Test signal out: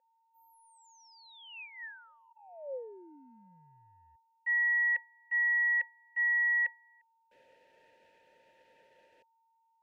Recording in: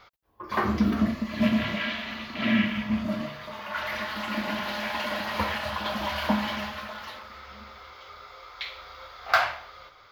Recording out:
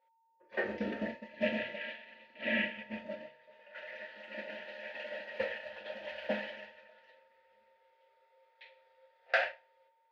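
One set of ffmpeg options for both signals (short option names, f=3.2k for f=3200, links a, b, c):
-filter_complex "[0:a]aeval=exprs='val(0)+0.0282*sin(2*PI*910*n/s)':c=same,agate=range=-33dB:threshold=-21dB:ratio=3:detection=peak,asplit=3[a][b][c];[a]bandpass=f=530:t=q:w=8,volume=0dB[d];[b]bandpass=f=1.84k:t=q:w=8,volume=-6dB[e];[c]bandpass=f=2.48k:t=q:w=8,volume=-9dB[f];[d][e][f]amix=inputs=3:normalize=0,volume=8dB"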